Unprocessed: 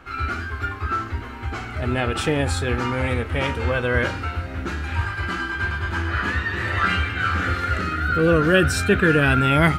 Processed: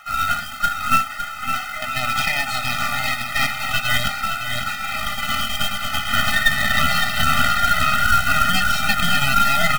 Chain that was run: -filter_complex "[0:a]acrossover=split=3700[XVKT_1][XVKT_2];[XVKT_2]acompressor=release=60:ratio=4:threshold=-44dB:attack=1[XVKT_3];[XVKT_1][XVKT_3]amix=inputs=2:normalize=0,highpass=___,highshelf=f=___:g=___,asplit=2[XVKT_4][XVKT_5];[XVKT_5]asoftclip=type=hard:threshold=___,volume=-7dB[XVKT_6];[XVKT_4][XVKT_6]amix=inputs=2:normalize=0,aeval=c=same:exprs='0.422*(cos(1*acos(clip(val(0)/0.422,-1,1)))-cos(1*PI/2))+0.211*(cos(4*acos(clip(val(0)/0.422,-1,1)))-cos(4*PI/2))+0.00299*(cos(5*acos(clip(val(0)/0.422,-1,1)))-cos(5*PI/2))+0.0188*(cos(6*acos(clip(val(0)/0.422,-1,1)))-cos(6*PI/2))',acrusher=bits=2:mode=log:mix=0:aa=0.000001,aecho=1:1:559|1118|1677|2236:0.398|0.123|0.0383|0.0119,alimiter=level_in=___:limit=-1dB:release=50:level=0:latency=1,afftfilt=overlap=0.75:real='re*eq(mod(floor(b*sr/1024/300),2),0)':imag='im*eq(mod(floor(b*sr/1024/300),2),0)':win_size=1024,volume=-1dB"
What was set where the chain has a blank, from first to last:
1400, 7900, -7, -21dB, 9dB